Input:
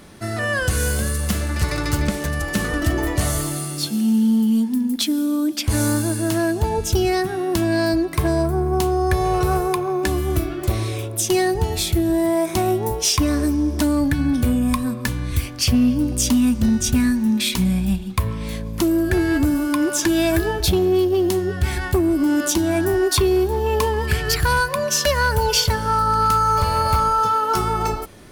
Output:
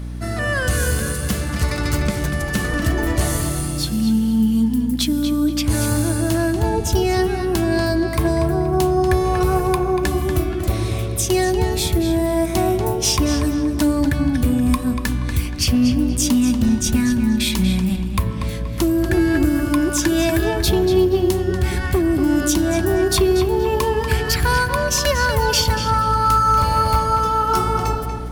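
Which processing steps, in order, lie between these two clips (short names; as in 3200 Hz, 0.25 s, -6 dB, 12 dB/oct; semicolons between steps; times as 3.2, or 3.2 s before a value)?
darkening echo 0.238 s, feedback 36%, low-pass 4300 Hz, level -6.5 dB; hum 60 Hz, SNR 10 dB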